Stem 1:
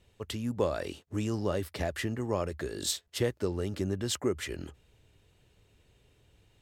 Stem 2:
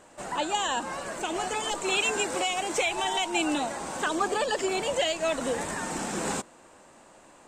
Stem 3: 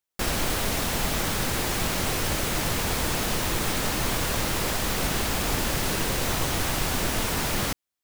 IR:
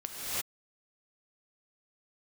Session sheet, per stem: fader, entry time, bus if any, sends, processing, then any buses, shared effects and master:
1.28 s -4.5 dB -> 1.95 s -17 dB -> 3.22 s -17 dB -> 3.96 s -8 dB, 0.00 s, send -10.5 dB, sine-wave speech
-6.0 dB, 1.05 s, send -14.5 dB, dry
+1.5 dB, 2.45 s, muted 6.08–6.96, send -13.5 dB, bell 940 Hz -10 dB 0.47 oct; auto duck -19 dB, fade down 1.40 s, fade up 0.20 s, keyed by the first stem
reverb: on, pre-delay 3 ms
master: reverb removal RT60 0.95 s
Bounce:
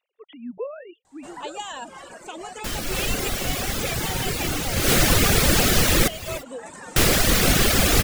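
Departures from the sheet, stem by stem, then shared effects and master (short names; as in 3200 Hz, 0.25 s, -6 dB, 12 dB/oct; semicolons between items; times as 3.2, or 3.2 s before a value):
stem 1: send off; stem 3 +1.5 dB -> +9.5 dB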